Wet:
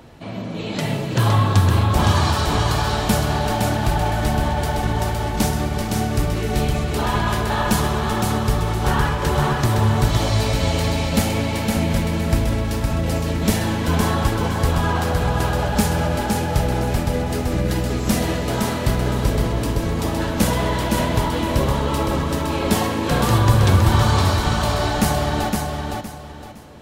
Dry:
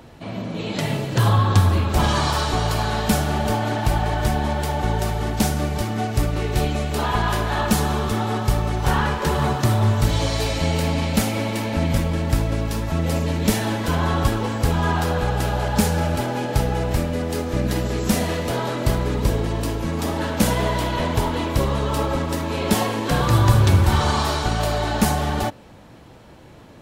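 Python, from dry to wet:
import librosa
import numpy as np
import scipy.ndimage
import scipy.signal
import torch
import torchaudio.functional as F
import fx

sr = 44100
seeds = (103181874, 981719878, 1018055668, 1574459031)

y = fx.echo_feedback(x, sr, ms=513, feedback_pct=28, wet_db=-4.0)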